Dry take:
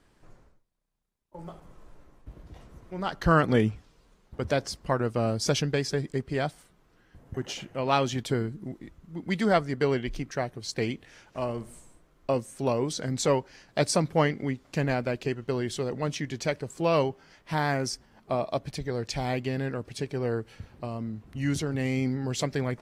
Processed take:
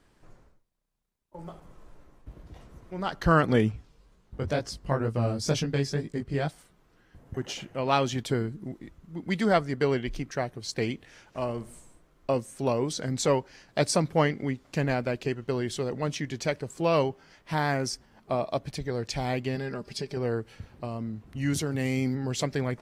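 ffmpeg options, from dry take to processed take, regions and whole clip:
ffmpeg -i in.wav -filter_complex "[0:a]asettb=1/sr,asplit=3[link_01][link_02][link_03];[link_01]atrim=end=3.724[link_04];[link_02]atrim=start=3.72:end=6.48,asetpts=PTS-STARTPTS,afade=type=in:duration=0.004:curve=qsin,afade=type=out:start_time=2.756:duration=0.004:curve=qsin,lowshelf=frequency=200:gain=7,flanger=delay=17.5:depth=4.2:speed=2.1[link_05];[link_03]atrim=start=6.476[link_06];[link_04][link_05]acrossfade=duration=0.004:curve1=hsin:curve2=qsin[link_07];[link_07][link_06]acrossfade=duration=0.004:curve1=qsin:curve2=hsin,asettb=1/sr,asplit=3[link_08][link_09][link_10];[link_08]atrim=end=19.554[link_11];[link_09]atrim=start=19.55:end=20.17,asetpts=PTS-STARTPTS,afade=type=in:duration=0.004:curve=qsin,afade=type=out:start_time=0.616:duration=0.004:curve=qsin,equalizer=frequency=4900:width=4.8:gain=12,aecho=1:1:5:0.54,atrim=end_sample=27342,acompressor=threshold=-31dB:ratio=2:attack=3.2:release=140:knee=1:detection=peak[link_12];[link_10]atrim=start=20.166[link_13];[link_11][link_12]acrossfade=duration=0.004:curve1=hsin:curve2=qsin[link_14];[link_14][link_13]acrossfade=duration=0.004:curve1=qsin:curve2=hsin,asettb=1/sr,asplit=3[link_15][link_16][link_17];[link_15]atrim=end=21.534[link_18];[link_16]atrim=start=21.53:end=22.15,asetpts=PTS-STARTPTS,afade=type=in:duration=0.004:curve=qsin,afade=type=out:start_time=0.616:duration=0.004:curve=qsin,highpass=58,highshelf=frequency=8800:gain=10.5[link_19];[link_17]atrim=start=22.146[link_20];[link_18][link_19]acrossfade=duration=0.004:curve1=hsin:curve2=qsin[link_21];[link_21][link_20]acrossfade=duration=0.004:curve1=qsin:curve2=hsin" out.wav

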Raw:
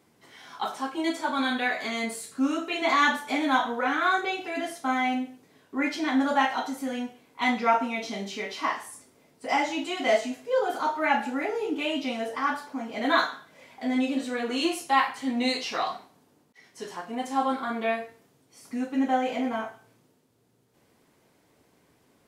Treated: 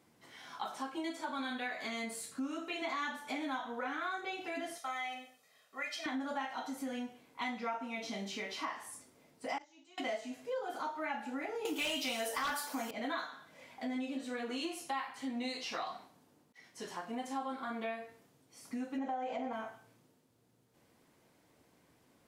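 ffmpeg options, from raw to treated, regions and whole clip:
ffmpeg -i in.wav -filter_complex "[0:a]asettb=1/sr,asplit=3[link_01][link_02][link_03];[link_01]atrim=end=4.784[link_04];[link_02]atrim=start=4.78:end=6.06,asetpts=PTS-STARTPTS,afade=type=in:duration=0.004:curve=qsin,afade=type=out:start_time=1.276:duration=0.004:curve=qsin,highpass=frequency=1500:poles=1,aecho=1:1:1.6:0.77,atrim=end_sample=56448[link_05];[link_03]atrim=start=6.056[link_06];[link_04][link_05]acrossfade=duration=0.004:curve1=hsin:curve2=qsin[link_07];[link_07][link_06]acrossfade=duration=0.004:curve1=qsin:curve2=hsin,asettb=1/sr,asplit=3[link_08][link_09][link_10];[link_08]atrim=end=9.584[link_11];[link_09]atrim=start=9.58:end=9.98,asetpts=PTS-STARTPTS,afade=type=in:duration=0.004:curve=qsin,afade=type=out:start_time=0.396:duration=0.004:curve=qsin,agate=range=-32dB:threshold=-22dB:ratio=16:release=100:detection=peak,lowpass=frequency=6200:width_type=q:width=3.1,acontrast=36[link_12];[link_10]atrim=start=9.976[link_13];[link_11][link_12]acrossfade=duration=0.004:curve1=hsin:curve2=qsin[link_14];[link_14][link_13]acrossfade=duration=0.004:curve1=qsin:curve2=hsin,asettb=1/sr,asplit=3[link_15][link_16][link_17];[link_15]atrim=end=11.654[link_18];[link_16]atrim=start=11.65:end=12.91,asetpts=PTS-STARTPTS,afade=type=in:duration=0.004:curve=qsin,afade=type=out:start_time=1.256:duration=0.004:curve=qsin,aemphasis=mode=production:type=riaa,aeval=exprs='0.237*sin(PI/2*2.82*val(0)/0.237)':channel_layout=same[link_19];[link_17]atrim=start=12.906[link_20];[link_18][link_19]acrossfade=duration=0.004:curve1=hsin:curve2=qsin[link_21];[link_21][link_20]acrossfade=duration=0.004:curve1=qsin:curve2=hsin,asettb=1/sr,asplit=3[link_22][link_23][link_24];[link_22]atrim=end=18.984[link_25];[link_23]atrim=start=18.98:end=19.53,asetpts=PTS-STARTPTS,afade=type=in:duration=0.004:curve=qsin,afade=type=out:start_time=0.546:duration=0.004:curve=qsin,lowpass=frequency=8600:width=0.5412,lowpass=frequency=8600:width=1.3066,equalizer=frequency=750:width=0.92:gain=10.5,acompressor=threshold=-22dB:ratio=2.5:attack=3.2:release=140:knee=1:detection=peak[link_26];[link_24]atrim=start=19.526[link_27];[link_25][link_26]acrossfade=duration=0.004:curve1=hsin:curve2=qsin[link_28];[link_28][link_27]acrossfade=duration=0.004:curve1=qsin:curve2=hsin,bandreject=frequency=410:width=12,acompressor=threshold=-33dB:ratio=4,volume=-4dB" out.wav

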